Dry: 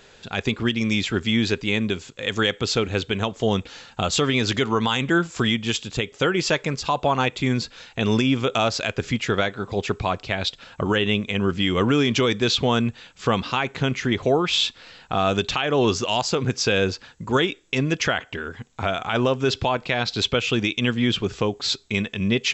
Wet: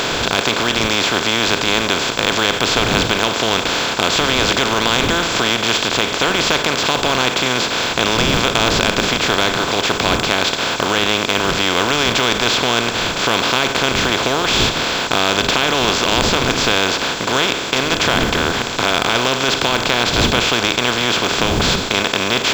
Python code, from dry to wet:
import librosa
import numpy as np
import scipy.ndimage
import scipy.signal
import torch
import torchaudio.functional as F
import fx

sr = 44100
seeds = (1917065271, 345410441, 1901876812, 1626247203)

y = fx.bin_compress(x, sr, power=0.2)
y = fx.dmg_wind(y, sr, seeds[0], corner_hz=250.0, level_db=-19.0)
y = fx.low_shelf(y, sr, hz=480.0, db=-8.0)
y = fx.quant_companded(y, sr, bits=6)
y = y * 10.0 ** (-2.5 / 20.0)